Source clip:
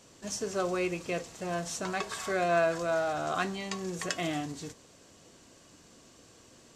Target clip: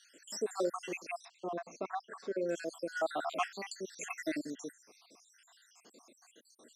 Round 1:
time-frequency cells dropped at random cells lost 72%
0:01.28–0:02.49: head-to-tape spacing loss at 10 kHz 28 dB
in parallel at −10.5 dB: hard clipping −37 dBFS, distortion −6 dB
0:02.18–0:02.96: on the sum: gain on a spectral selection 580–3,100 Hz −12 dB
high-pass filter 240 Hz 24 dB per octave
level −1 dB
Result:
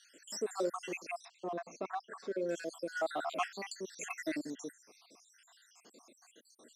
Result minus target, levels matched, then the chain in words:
hard clipping: distortion +15 dB
time-frequency cells dropped at random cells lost 72%
0:01.28–0:02.49: head-to-tape spacing loss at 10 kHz 28 dB
in parallel at −10.5 dB: hard clipping −26 dBFS, distortion −22 dB
0:02.18–0:02.96: on the sum: gain on a spectral selection 580–3,100 Hz −12 dB
high-pass filter 240 Hz 24 dB per octave
level −1 dB

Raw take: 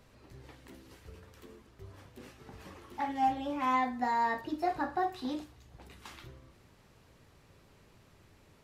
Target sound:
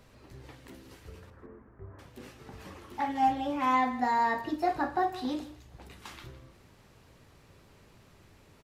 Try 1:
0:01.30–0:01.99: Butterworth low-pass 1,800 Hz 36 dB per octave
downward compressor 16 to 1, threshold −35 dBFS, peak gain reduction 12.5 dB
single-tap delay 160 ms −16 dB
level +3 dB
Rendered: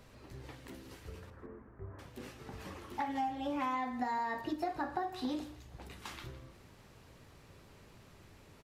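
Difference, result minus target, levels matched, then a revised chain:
downward compressor: peak gain reduction +12.5 dB
0:01.30–0:01.99: Butterworth low-pass 1,800 Hz 36 dB per octave
single-tap delay 160 ms −16 dB
level +3 dB

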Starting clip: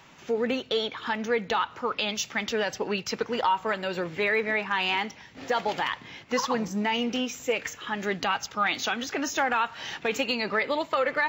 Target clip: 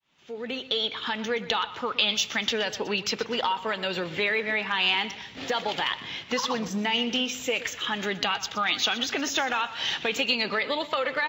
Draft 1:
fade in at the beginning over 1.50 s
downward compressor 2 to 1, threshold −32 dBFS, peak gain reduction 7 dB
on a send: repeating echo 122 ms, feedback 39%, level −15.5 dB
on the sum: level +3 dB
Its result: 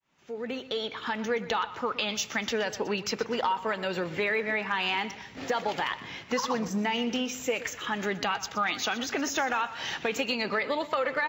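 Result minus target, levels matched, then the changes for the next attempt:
4,000 Hz band −4.5 dB
add after downward compressor: parametric band 3,400 Hz +9.5 dB 0.89 octaves

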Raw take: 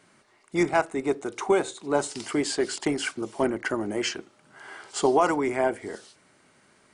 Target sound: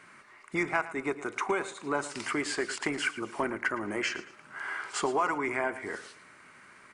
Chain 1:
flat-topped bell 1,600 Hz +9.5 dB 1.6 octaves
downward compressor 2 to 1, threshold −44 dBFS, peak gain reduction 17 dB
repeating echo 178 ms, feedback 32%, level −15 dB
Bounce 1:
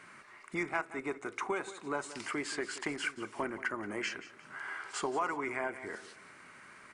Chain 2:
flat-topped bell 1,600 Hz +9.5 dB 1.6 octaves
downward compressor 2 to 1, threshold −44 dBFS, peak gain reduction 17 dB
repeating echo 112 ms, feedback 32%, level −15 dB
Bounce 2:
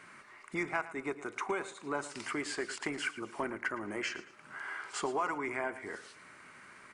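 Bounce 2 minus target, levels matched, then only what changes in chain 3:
downward compressor: peak gain reduction +5.5 dB
change: downward compressor 2 to 1, threshold −33.5 dBFS, peak gain reduction 12 dB

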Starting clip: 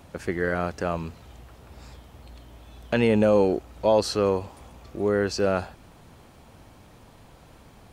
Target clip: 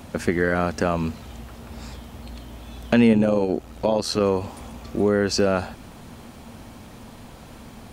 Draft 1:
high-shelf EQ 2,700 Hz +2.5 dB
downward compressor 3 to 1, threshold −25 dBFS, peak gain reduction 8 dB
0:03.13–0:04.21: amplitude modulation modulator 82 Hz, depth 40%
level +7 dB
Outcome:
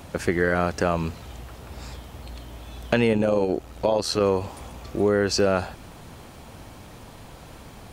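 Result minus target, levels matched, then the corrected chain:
250 Hz band −3.0 dB
high-shelf EQ 2,700 Hz +2.5 dB
downward compressor 3 to 1, threshold −25 dBFS, peak gain reduction 8 dB
parametric band 230 Hz +9.5 dB 0.28 octaves
0:03.13–0:04.21: amplitude modulation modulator 82 Hz, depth 40%
level +7 dB

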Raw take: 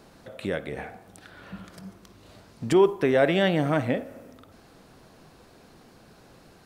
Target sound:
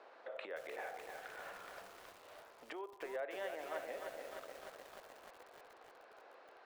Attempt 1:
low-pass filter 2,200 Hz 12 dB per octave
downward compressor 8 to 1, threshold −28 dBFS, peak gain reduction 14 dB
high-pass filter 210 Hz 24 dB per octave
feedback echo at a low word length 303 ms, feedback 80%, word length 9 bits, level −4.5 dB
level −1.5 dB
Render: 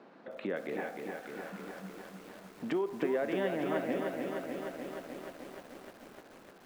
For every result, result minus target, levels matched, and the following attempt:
250 Hz band +11.0 dB; downward compressor: peak gain reduction −7 dB
low-pass filter 2,200 Hz 12 dB per octave
downward compressor 8 to 1, threshold −28 dBFS, peak gain reduction 14 dB
high-pass filter 480 Hz 24 dB per octave
feedback echo at a low word length 303 ms, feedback 80%, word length 9 bits, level −4.5 dB
level −1.5 dB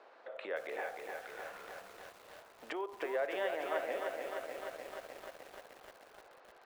downward compressor: peak gain reduction −7 dB
low-pass filter 2,200 Hz 12 dB per octave
downward compressor 8 to 1, threshold −36 dBFS, peak gain reduction 21 dB
high-pass filter 480 Hz 24 dB per octave
feedback echo at a low word length 303 ms, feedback 80%, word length 9 bits, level −4.5 dB
level −1.5 dB

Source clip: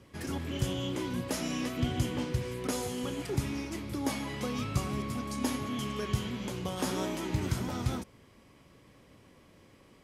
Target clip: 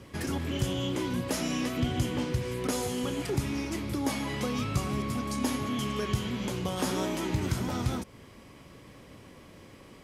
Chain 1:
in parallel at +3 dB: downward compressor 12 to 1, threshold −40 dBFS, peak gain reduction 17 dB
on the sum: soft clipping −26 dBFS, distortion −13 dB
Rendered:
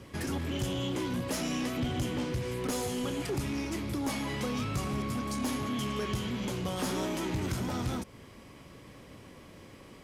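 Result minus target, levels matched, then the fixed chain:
soft clipping: distortion +15 dB
in parallel at +3 dB: downward compressor 12 to 1, threshold −40 dBFS, peak gain reduction 17 dB
on the sum: soft clipping −14.5 dBFS, distortion −28 dB

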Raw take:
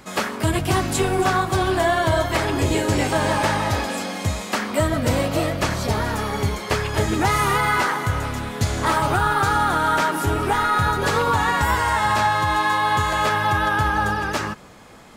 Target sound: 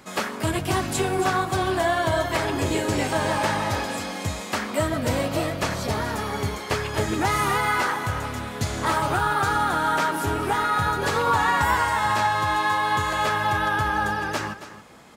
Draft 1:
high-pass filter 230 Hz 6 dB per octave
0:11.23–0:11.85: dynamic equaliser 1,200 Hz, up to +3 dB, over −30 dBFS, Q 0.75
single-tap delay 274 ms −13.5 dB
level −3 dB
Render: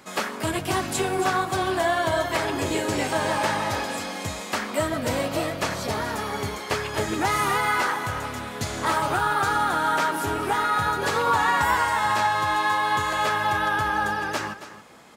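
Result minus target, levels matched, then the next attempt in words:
125 Hz band −4.5 dB
high-pass filter 90 Hz 6 dB per octave
0:11.23–0:11.85: dynamic equaliser 1,200 Hz, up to +3 dB, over −30 dBFS, Q 0.75
single-tap delay 274 ms −13.5 dB
level −3 dB

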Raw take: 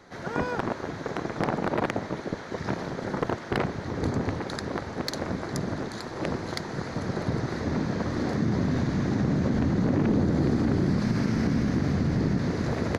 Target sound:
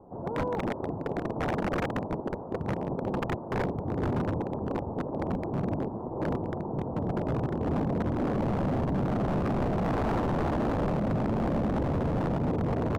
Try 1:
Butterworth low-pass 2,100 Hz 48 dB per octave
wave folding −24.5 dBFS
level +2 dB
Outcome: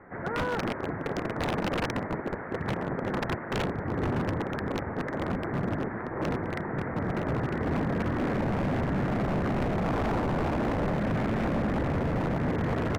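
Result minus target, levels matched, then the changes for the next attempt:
2,000 Hz band +6.0 dB
change: Butterworth low-pass 990 Hz 48 dB per octave

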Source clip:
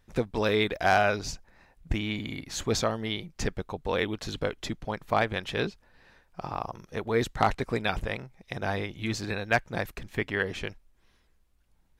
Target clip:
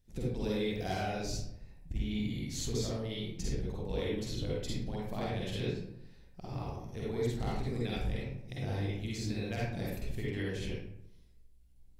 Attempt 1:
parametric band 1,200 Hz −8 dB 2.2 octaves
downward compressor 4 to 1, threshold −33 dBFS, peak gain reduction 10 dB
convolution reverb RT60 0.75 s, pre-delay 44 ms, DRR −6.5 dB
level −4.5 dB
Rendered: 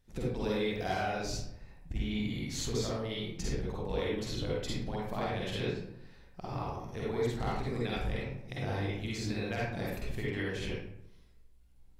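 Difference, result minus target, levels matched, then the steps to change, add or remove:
1,000 Hz band +3.5 dB
change: parametric band 1,200 Hz −18 dB 2.2 octaves

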